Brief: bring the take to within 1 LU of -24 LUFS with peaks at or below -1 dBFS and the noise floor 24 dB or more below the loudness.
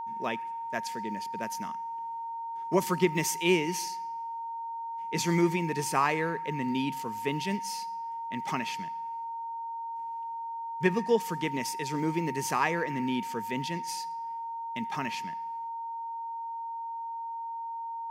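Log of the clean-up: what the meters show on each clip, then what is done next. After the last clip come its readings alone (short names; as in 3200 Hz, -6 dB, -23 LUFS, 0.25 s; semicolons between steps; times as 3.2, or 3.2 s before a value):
steady tone 920 Hz; tone level -34 dBFS; loudness -32.0 LUFS; peak -9.5 dBFS; loudness target -24.0 LUFS
-> notch 920 Hz, Q 30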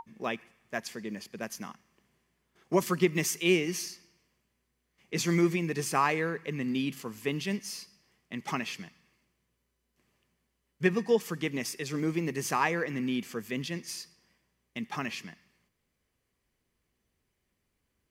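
steady tone none; loudness -31.5 LUFS; peak -10.0 dBFS; loudness target -24.0 LUFS
-> gain +7.5 dB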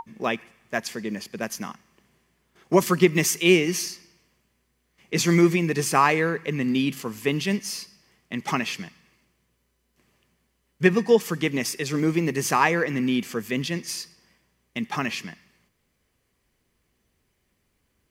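loudness -24.0 LUFS; peak -2.5 dBFS; noise floor -72 dBFS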